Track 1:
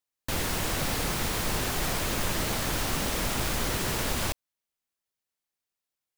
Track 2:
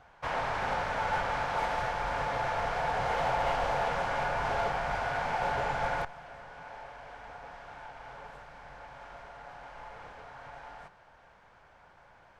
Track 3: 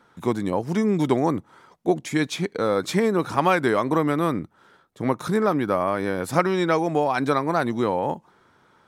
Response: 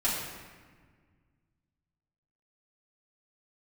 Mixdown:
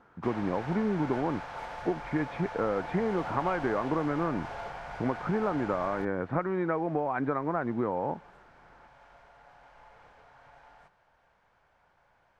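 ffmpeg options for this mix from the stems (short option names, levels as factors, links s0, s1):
-filter_complex "[1:a]volume=0.355[s0];[2:a]lowpass=f=1900:w=0.5412,lowpass=f=1900:w=1.3066,acompressor=threshold=0.0708:ratio=6,volume=0.75[s1];[s0][s1]amix=inputs=2:normalize=0"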